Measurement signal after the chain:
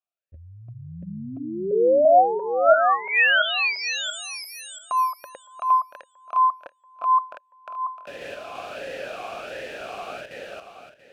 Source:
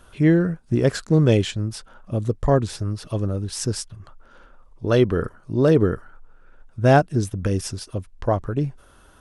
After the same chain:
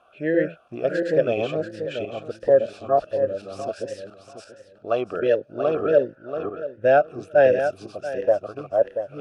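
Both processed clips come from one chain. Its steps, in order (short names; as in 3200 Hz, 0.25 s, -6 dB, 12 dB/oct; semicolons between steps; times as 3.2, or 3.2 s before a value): regenerating reverse delay 0.342 s, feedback 43%, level -0.5 dB; vowel sweep a-e 1.4 Hz; gain +8 dB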